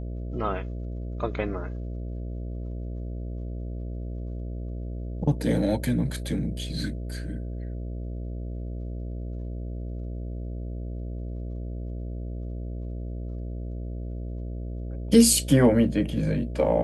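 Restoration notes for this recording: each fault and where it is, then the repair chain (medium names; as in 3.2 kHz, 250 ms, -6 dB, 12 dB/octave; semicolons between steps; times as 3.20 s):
buzz 60 Hz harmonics 11 -33 dBFS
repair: de-hum 60 Hz, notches 11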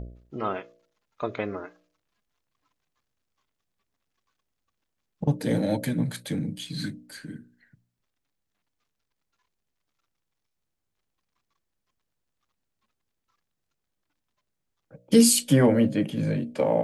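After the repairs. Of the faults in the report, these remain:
nothing left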